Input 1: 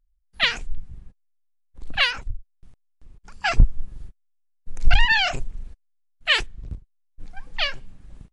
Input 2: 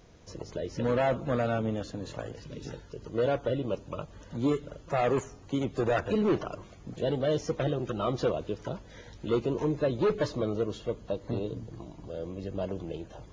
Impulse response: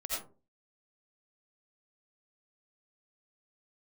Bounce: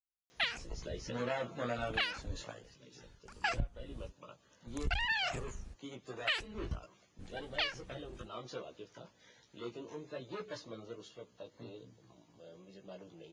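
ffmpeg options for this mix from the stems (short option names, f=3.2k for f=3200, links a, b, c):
-filter_complex "[0:a]agate=range=-33dB:threshold=-38dB:ratio=3:detection=peak,volume=-3.5dB[a];[1:a]flanger=delay=15.5:depth=2.3:speed=1.2,highpass=120,tiltshelf=f=1.3k:g=-5.5,adelay=300,volume=-1.5dB,afade=t=out:st=2.44:d=0.22:silence=0.398107[b];[a][b]amix=inputs=2:normalize=0,highpass=49,acompressor=threshold=-31dB:ratio=6"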